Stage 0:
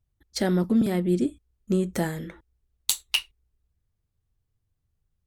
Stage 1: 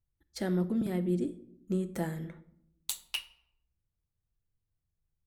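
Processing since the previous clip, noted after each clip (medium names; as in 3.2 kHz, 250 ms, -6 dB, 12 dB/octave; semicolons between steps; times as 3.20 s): peaking EQ 4.9 kHz -4 dB 1.8 oct; simulated room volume 1900 m³, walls furnished, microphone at 0.76 m; trim -8.5 dB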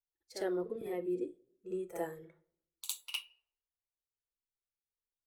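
resonant low shelf 310 Hz -10.5 dB, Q 3; spectral noise reduction 12 dB; reverse echo 58 ms -10 dB; trim -3.5 dB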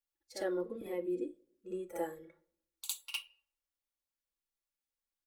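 comb 3.6 ms, depth 64%; trim -1 dB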